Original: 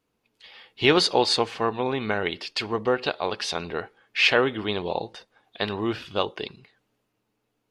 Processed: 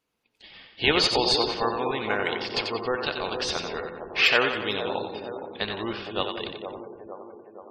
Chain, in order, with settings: tilt shelf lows -4.5 dB, about 780 Hz; feedback echo behind a band-pass 464 ms, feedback 60%, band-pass 500 Hz, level -7 dB; in parallel at -11 dB: decimation with a swept rate 21×, swing 160% 0.38 Hz; on the sum: two-band feedback delay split 420 Hz, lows 287 ms, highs 90 ms, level -6 dB; spectral gate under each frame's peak -25 dB strong; trim -4.5 dB

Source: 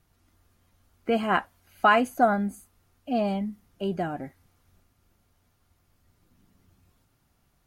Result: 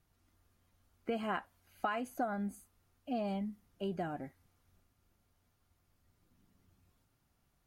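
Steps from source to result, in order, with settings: compression 10:1, threshold -24 dBFS, peak gain reduction 10.5 dB; trim -7.5 dB

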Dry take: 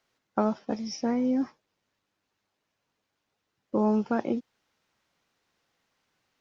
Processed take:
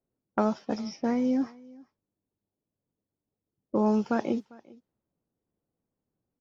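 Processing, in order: level-controlled noise filter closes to 360 Hz, open at -25.5 dBFS; treble shelf 4.3 kHz +9.5 dB, from 1.37 s +2.5 dB, from 3.86 s +9.5 dB; delay 399 ms -23.5 dB

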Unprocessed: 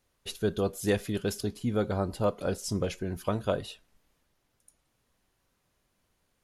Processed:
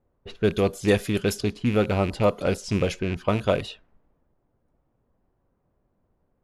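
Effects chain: rattle on loud lows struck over -34 dBFS, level -30 dBFS; level-controlled noise filter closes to 750 Hz, open at -25.5 dBFS; trim +6.5 dB

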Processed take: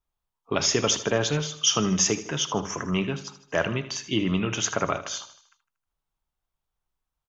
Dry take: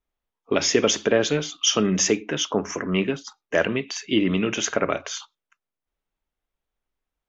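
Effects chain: graphic EQ 125/250/500/1000/2000 Hz +6/-6/-6/+4/-6 dB; feedback delay 78 ms, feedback 50%, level -14 dB

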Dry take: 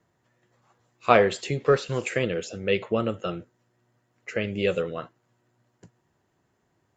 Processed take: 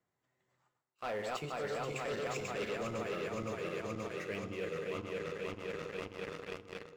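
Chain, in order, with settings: backward echo that repeats 253 ms, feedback 82%, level -4 dB; Doppler pass-by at 2.75 s, 21 m/s, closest 21 m; bass shelf 300 Hz -4.5 dB; waveshaping leveller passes 3; reverse; compression 8:1, threshold -40 dBFS, peak gain reduction 26 dB; reverse; FDN reverb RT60 1.3 s, high-frequency decay 0.45×, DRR 13 dB; trim +2 dB

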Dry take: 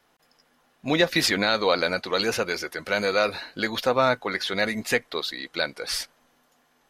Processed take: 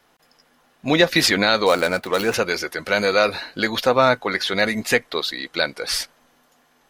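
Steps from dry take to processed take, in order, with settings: 1.66–2.34 s: median filter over 9 samples; trim +5 dB

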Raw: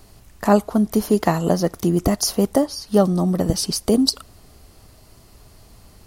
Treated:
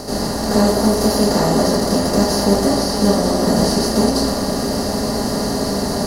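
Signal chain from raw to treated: spectral levelling over time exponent 0.2; 0.59–1.20 s: treble shelf 12 kHz +6 dB; reverberation RT60 0.55 s, pre-delay 74 ms, DRR -9.5 dB; trim -16 dB

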